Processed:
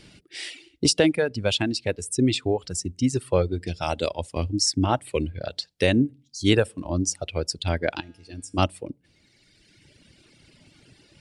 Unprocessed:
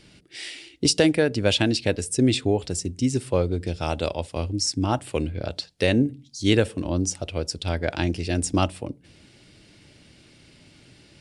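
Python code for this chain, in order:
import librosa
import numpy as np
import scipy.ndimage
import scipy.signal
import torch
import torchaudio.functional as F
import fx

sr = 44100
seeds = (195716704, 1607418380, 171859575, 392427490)

y = fx.rider(x, sr, range_db=4, speed_s=2.0)
y = fx.comb_fb(y, sr, f0_hz=96.0, decay_s=1.3, harmonics='odd', damping=0.0, mix_pct=80, at=(7.99, 8.57), fade=0.02)
y = fx.dereverb_blind(y, sr, rt60_s=1.9)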